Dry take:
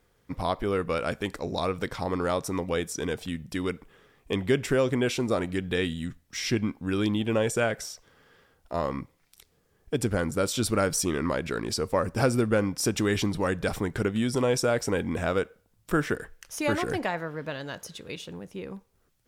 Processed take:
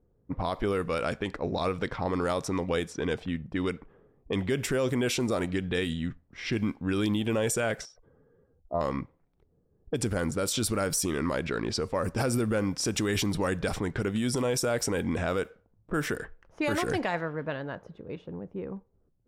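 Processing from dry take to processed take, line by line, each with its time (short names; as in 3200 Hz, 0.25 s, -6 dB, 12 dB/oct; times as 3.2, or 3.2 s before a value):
7.85–8.81 spectral contrast raised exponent 1.6
whole clip: low-pass opened by the level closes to 420 Hz, open at -22.5 dBFS; high shelf 9400 Hz +9.5 dB; limiter -20 dBFS; gain +1.5 dB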